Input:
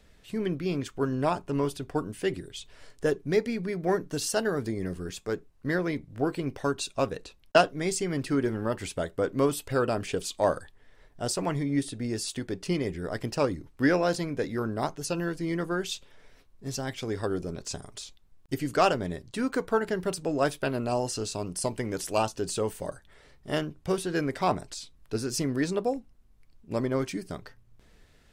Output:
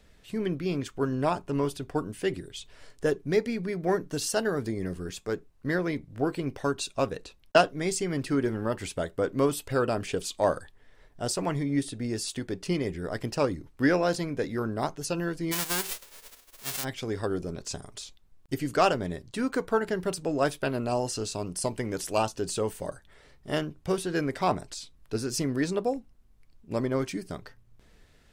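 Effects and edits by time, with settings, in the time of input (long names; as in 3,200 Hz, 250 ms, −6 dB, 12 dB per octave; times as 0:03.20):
0:15.51–0:16.83: spectral envelope flattened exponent 0.1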